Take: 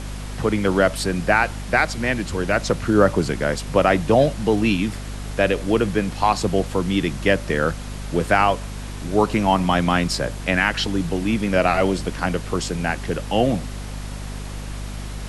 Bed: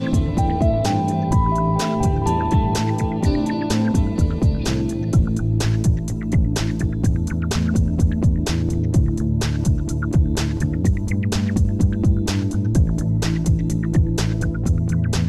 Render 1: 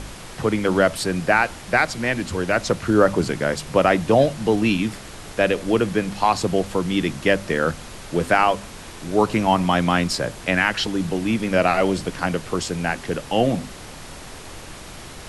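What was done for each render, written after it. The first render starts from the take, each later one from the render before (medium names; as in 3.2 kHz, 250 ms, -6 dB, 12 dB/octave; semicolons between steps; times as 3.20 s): de-hum 50 Hz, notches 5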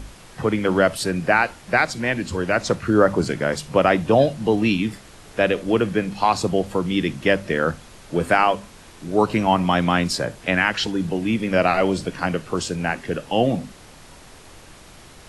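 noise print and reduce 7 dB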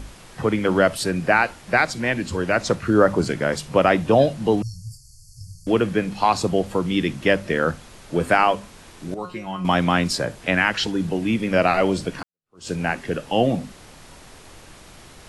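4.62–5.67 s: brick-wall FIR band-stop 150–4300 Hz; 9.14–9.65 s: feedback comb 180 Hz, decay 0.27 s, mix 90%; 12.23–12.69 s: fade in exponential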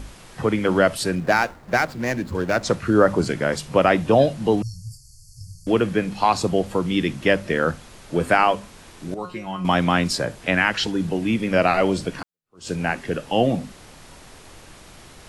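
1.15–2.63 s: median filter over 15 samples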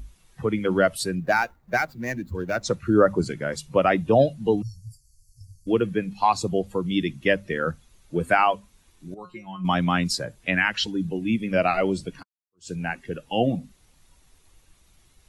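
expander on every frequency bin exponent 1.5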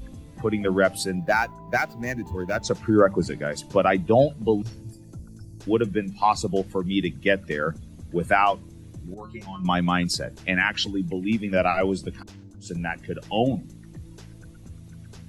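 add bed -24 dB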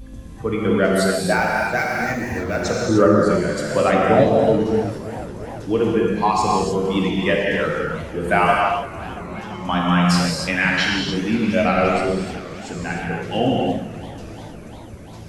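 gated-style reverb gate 330 ms flat, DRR -3.5 dB; modulated delay 344 ms, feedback 76%, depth 130 cents, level -17 dB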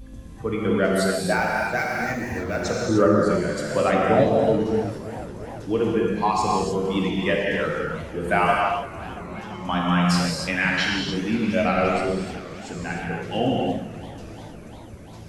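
trim -3.5 dB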